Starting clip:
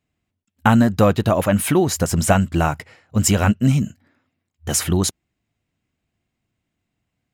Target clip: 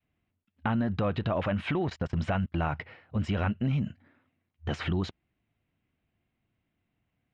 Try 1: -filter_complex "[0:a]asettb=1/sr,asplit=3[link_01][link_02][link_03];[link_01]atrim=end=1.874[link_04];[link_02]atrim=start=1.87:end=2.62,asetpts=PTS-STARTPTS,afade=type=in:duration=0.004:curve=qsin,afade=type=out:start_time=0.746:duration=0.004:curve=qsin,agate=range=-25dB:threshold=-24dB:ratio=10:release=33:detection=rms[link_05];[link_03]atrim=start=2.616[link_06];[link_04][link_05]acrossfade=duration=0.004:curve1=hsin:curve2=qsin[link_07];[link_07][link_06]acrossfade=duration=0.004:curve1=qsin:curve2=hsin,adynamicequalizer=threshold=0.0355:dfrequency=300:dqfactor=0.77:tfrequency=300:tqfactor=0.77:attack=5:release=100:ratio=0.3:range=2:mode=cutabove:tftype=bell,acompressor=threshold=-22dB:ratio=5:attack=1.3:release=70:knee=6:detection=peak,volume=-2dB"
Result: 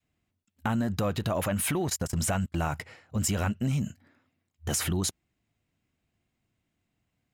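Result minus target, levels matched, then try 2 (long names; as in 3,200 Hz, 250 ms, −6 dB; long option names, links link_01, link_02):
4,000 Hz band +4.0 dB
-filter_complex "[0:a]asettb=1/sr,asplit=3[link_01][link_02][link_03];[link_01]atrim=end=1.874[link_04];[link_02]atrim=start=1.87:end=2.62,asetpts=PTS-STARTPTS,afade=type=in:duration=0.004:curve=qsin,afade=type=out:start_time=0.746:duration=0.004:curve=qsin,agate=range=-25dB:threshold=-24dB:ratio=10:release=33:detection=rms[link_05];[link_03]atrim=start=2.616[link_06];[link_04][link_05]acrossfade=duration=0.004:curve1=hsin:curve2=qsin[link_07];[link_07][link_06]acrossfade=duration=0.004:curve1=qsin:curve2=hsin,adynamicequalizer=threshold=0.0355:dfrequency=300:dqfactor=0.77:tfrequency=300:tqfactor=0.77:attack=5:release=100:ratio=0.3:range=2:mode=cutabove:tftype=bell,acompressor=threshold=-22dB:ratio=5:attack=1.3:release=70:knee=6:detection=peak,lowpass=frequency=3400:width=0.5412,lowpass=frequency=3400:width=1.3066,volume=-2dB"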